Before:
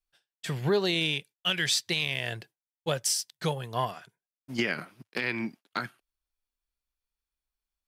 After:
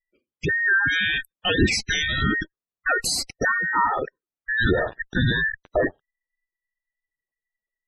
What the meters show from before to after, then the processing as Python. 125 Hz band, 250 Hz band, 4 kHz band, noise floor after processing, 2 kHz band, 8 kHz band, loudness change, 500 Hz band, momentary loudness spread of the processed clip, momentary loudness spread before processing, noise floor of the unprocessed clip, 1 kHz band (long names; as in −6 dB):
+7.0 dB, +7.0 dB, +2.5 dB, below −85 dBFS, +12.5 dB, +1.5 dB, +7.0 dB, +5.0 dB, 9 LU, 12 LU, below −85 dBFS, +9.5 dB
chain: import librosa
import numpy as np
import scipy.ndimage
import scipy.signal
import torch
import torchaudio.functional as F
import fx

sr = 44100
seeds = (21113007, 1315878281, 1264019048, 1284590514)

p1 = fx.band_invert(x, sr, width_hz=2000)
p2 = fx.fuzz(p1, sr, gain_db=50.0, gate_db=-55.0)
p3 = p1 + (p2 * librosa.db_to_amplitude(-10.5))
p4 = fx.tilt_shelf(p3, sr, db=5.5, hz=1100.0)
p5 = fx.spec_gate(p4, sr, threshold_db=-15, keep='strong')
y = p5 * librosa.db_to_amplitude(2.0)